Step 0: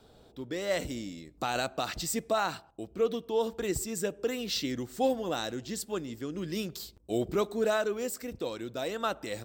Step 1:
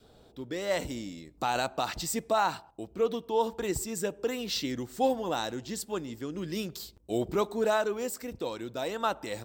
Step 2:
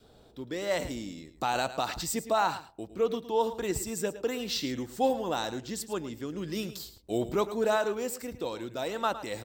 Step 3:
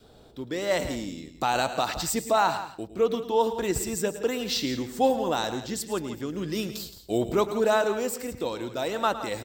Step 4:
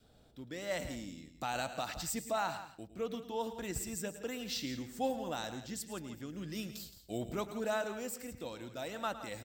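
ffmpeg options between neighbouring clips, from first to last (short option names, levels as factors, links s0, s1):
-af "adynamicequalizer=threshold=0.00355:dfrequency=910:dqfactor=3.5:tfrequency=910:tqfactor=3.5:attack=5:release=100:ratio=0.375:range=4:mode=boostabove:tftype=bell"
-af "aecho=1:1:109:0.211"
-af "aecho=1:1:170:0.224,volume=1.58"
-af "equalizer=f=400:t=o:w=0.67:g=-8,equalizer=f=1000:t=o:w=0.67:g=-6,equalizer=f=4000:t=o:w=0.67:g=-3,volume=0.376"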